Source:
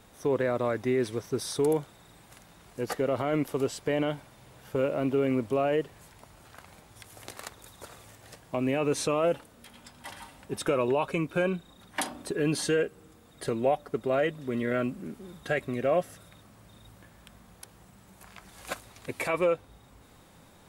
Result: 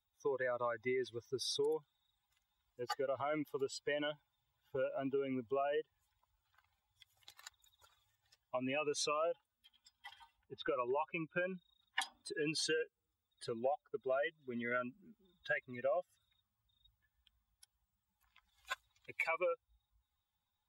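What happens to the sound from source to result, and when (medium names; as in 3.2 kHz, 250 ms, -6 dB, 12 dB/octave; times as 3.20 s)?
10.37–11.56 s: distance through air 210 m
whole clip: expander on every frequency bin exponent 2; three-band isolator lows -16 dB, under 490 Hz, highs -15 dB, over 6.4 kHz; compression 6:1, threshold -39 dBFS; trim +5 dB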